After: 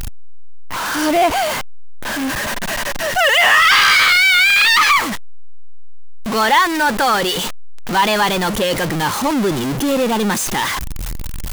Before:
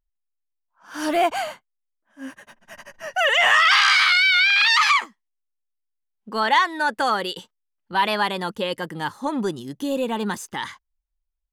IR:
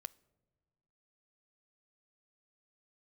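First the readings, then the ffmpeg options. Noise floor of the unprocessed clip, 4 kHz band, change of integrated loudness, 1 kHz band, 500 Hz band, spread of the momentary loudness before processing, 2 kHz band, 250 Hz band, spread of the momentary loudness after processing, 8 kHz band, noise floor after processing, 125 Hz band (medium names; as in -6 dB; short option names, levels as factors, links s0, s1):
-78 dBFS, +5.5 dB, +5.0 dB, +6.0 dB, +7.5 dB, 17 LU, +5.5 dB, +9.0 dB, 16 LU, +12.5 dB, -22 dBFS, no reading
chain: -af "aeval=exprs='val(0)+0.5*0.119*sgn(val(0))':c=same,volume=1.33"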